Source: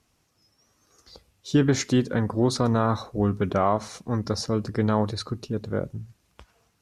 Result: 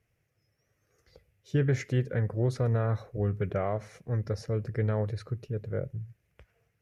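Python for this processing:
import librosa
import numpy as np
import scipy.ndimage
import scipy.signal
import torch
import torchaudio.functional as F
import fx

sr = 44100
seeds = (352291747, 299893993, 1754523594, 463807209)

y = fx.graphic_eq(x, sr, hz=(125, 250, 500, 1000, 2000, 4000, 8000), db=(9, -10, 7, -12, 9, -11, -8))
y = y * 10.0 ** (-7.0 / 20.0)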